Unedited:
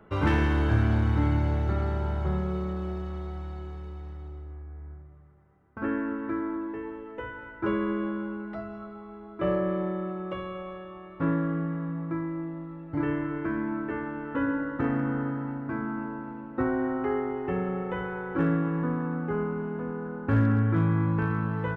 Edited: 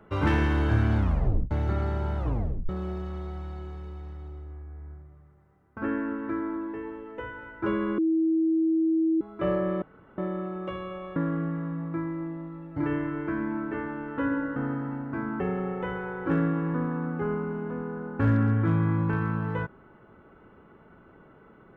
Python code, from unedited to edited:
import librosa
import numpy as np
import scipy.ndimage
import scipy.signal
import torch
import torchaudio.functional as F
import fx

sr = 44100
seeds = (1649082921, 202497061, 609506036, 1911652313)

y = fx.edit(x, sr, fx.tape_stop(start_s=0.97, length_s=0.54),
    fx.tape_stop(start_s=2.18, length_s=0.51),
    fx.bleep(start_s=7.98, length_s=1.23, hz=323.0, db=-20.5),
    fx.insert_room_tone(at_s=9.82, length_s=0.36),
    fx.cut(start_s=10.8, length_s=0.53),
    fx.cut(start_s=14.73, length_s=0.39),
    fx.cut(start_s=15.96, length_s=1.53), tone=tone)